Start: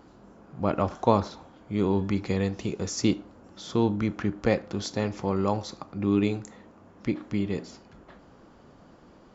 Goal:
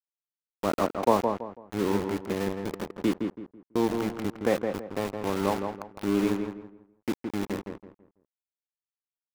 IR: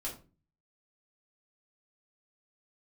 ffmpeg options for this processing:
-filter_complex "[0:a]acrossover=split=190 2100:gain=0.158 1 0.2[s0][s1][s2];[s0][s1][s2]amix=inputs=3:normalize=0,aeval=exprs='val(0)*gte(abs(val(0)),0.0355)':c=same,asplit=2[s3][s4];[s4]adelay=165,lowpass=f=1800:p=1,volume=0.562,asplit=2[s5][s6];[s6]adelay=165,lowpass=f=1800:p=1,volume=0.31,asplit=2[s7][s8];[s8]adelay=165,lowpass=f=1800:p=1,volume=0.31,asplit=2[s9][s10];[s10]adelay=165,lowpass=f=1800:p=1,volume=0.31[s11];[s3][s5][s7][s9][s11]amix=inputs=5:normalize=0"

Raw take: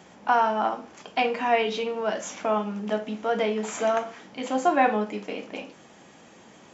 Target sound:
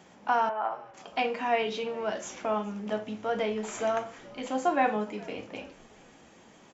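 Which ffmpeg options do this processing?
-filter_complex "[0:a]asettb=1/sr,asplit=3[s0][s1][s2];[s0]atrim=end=0.494[s3];[s1]atrim=start=0.49:end=0.94,asetpts=PTS-STARTPTS,afade=t=in:d=0.004:c=qsin,afade=t=out:st=0.446:d=0.004:c=qsin,acrossover=split=430 2500:gain=0.0708 1 0.0794[s4][s5][s6];[s4][s5][s6]amix=inputs=3:normalize=0[s7];[s2]atrim=start=0.936[s8];[s3][s7]acrossfade=d=0.004:c1=hsin:c2=qsin[s9];[s9][s8]acrossfade=d=0.004:c1=qsin:c2=hsin,asplit=4[s10][s11][s12][s13];[s11]adelay=416,afreqshift=-94,volume=0.075[s14];[s12]adelay=832,afreqshift=-188,volume=0.0324[s15];[s13]adelay=1248,afreqshift=-282,volume=0.0138[s16];[s10][s14][s15][s16]amix=inputs=4:normalize=0,volume=0.596"

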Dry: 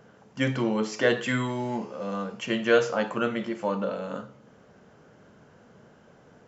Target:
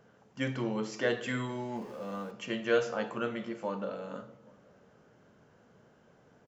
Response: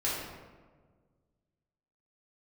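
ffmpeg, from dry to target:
-filter_complex "[0:a]asettb=1/sr,asplit=3[s0][s1][s2];[s0]atrim=end=1.764[s3];[s1]atrim=start=1.76:end=2.31,asetpts=PTS-STARTPTS,afade=t=in:d=0.004:c=qsin,afade=t=out:st=0.546:d=0.004:c=qsin,aeval=exprs='val(0)+0.5*0.00562*sgn(val(0))':c=same[s4];[s2]atrim=start=2.306[s5];[s3][s4]acrossfade=d=0.004:c1=hsin:c2=qsin[s6];[s6][s5]acrossfade=d=0.004:c1=qsin:c2=hsin,asplit=2[s7][s8];[s8]adelay=816.3,volume=0.0398,highshelf=f=4000:g=-18.4[s9];[s7][s9]amix=inputs=2:normalize=0,asplit=2[s10][s11];[1:a]atrim=start_sample=2205,asetrate=52920,aresample=44100[s12];[s11][s12]afir=irnorm=-1:irlink=0,volume=0.112[s13];[s10][s13]amix=inputs=2:normalize=0,volume=0.398"

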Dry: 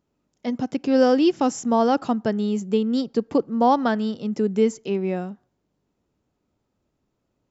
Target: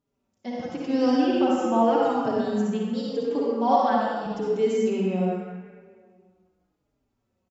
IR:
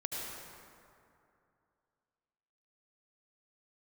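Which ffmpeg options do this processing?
-filter_complex "[0:a]asettb=1/sr,asplit=3[s0][s1][s2];[s0]atrim=end=1.204[s3];[s1]atrim=start=1.2:end=2.02,asetpts=PTS-STARTPTS,afade=t=in:d=0.004:c=qsin,afade=t=out:st=0.816:d=0.004:c=qsin,highshelf=f=3500:t=q:w=1.5:g=-7[s4];[s2]atrim=start=2.016[s5];[s3][s4]acrossfade=d=0.004:c1=hsin:c2=qsin[s6];[s6][s5]acrossfade=d=0.004:c1=qsin:c2=hsin,asettb=1/sr,asplit=3[s7][s8][s9];[s7]atrim=end=3.154[s10];[s8]atrim=start=3.15:end=4.26,asetpts=PTS-STARTPTS,afade=t=in:d=0.004:c=qsin,afade=t=out:st=1.106:d=0.004:c=qsin,highpass=280[s11];[s9]atrim=start=4.256[s12];[s10][s11]acrossfade=d=0.004:c1=hsin:c2=qsin[s13];[s13][s12]acrossfade=d=0.004:c1=qsin:c2=hsin[s14];[1:a]atrim=start_sample=2205,asetrate=66150,aresample=44100[s15];[s14][s15]afir=irnorm=-1:irlink=0,asplit=2[s16][s17];[s17]adelay=4.5,afreqshift=-0.86[s18];[s16][s18]amix=inputs=2:normalize=1,volume=1.26"

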